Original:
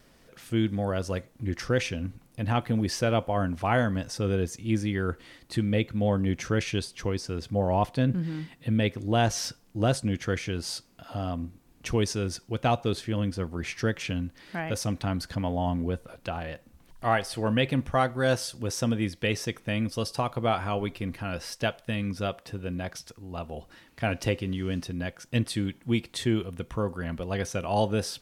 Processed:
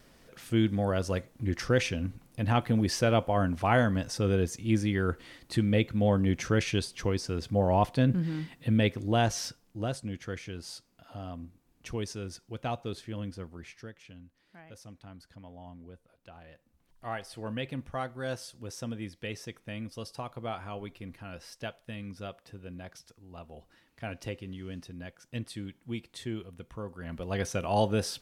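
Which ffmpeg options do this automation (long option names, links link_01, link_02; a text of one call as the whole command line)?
ffmpeg -i in.wav -af "volume=19dB,afade=type=out:start_time=8.84:duration=1.07:silence=0.354813,afade=type=out:start_time=13.32:duration=0.6:silence=0.281838,afade=type=in:start_time=16.18:duration=1.21:silence=0.334965,afade=type=in:start_time=26.95:duration=0.47:silence=0.334965" out.wav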